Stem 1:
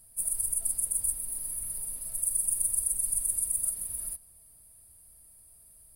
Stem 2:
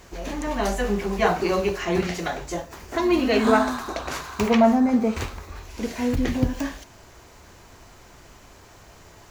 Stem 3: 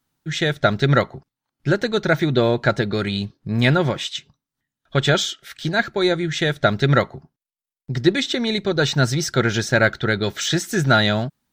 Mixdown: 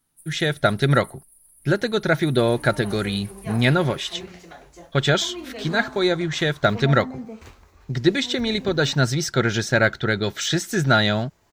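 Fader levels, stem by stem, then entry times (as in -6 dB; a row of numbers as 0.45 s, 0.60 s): -19.0 dB, -15.0 dB, -1.5 dB; 0.00 s, 2.25 s, 0.00 s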